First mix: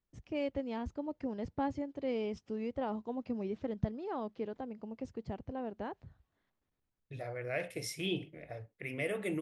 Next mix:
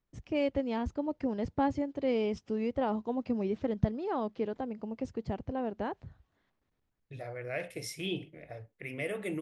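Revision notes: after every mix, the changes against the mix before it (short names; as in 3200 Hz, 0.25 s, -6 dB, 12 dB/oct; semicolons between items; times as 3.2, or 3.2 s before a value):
first voice +5.5 dB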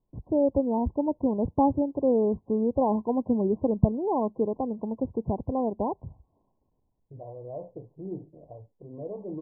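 first voice +7.0 dB; master: add brick-wall FIR low-pass 1100 Hz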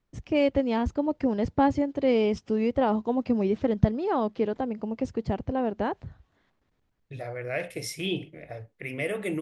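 second voice +5.5 dB; master: remove brick-wall FIR low-pass 1100 Hz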